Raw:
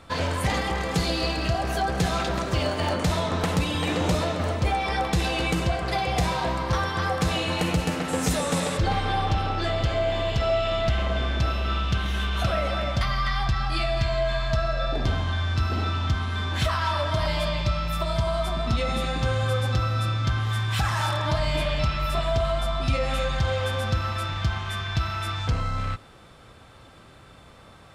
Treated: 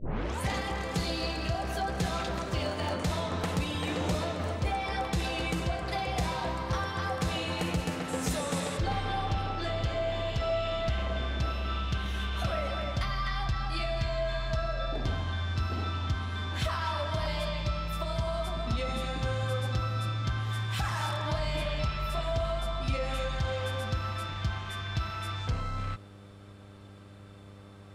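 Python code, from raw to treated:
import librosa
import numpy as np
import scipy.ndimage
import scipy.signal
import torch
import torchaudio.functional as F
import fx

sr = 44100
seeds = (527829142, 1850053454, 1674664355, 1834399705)

y = fx.tape_start_head(x, sr, length_s=0.41)
y = fx.dmg_buzz(y, sr, base_hz=100.0, harmonics=6, level_db=-44.0, tilt_db=-6, odd_only=False)
y = y * 10.0 ** (-6.5 / 20.0)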